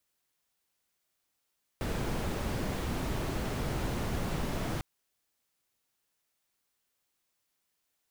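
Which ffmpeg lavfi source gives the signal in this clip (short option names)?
-f lavfi -i "anoisesrc=c=brown:a=0.111:d=3:r=44100:seed=1"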